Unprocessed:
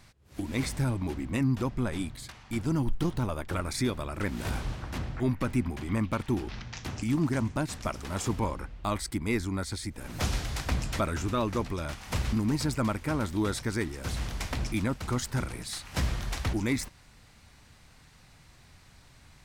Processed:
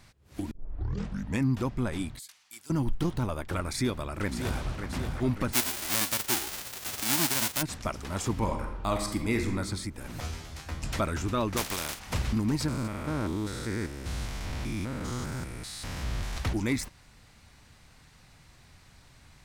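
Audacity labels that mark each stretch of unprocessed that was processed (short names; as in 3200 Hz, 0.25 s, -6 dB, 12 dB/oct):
0.510000	0.510000	tape start 0.92 s
2.190000	2.700000	differentiator
3.730000	4.870000	echo throw 0.58 s, feedback 60%, level -8 dB
5.520000	7.610000	spectral whitening exponent 0.1
8.310000	9.580000	reverb throw, RT60 0.98 s, DRR 3.5 dB
10.200000	10.830000	resonator 80 Hz, decay 0.32 s, mix 90%
11.560000	11.980000	spectral contrast lowered exponent 0.32
12.680000	16.370000	stepped spectrum every 0.2 s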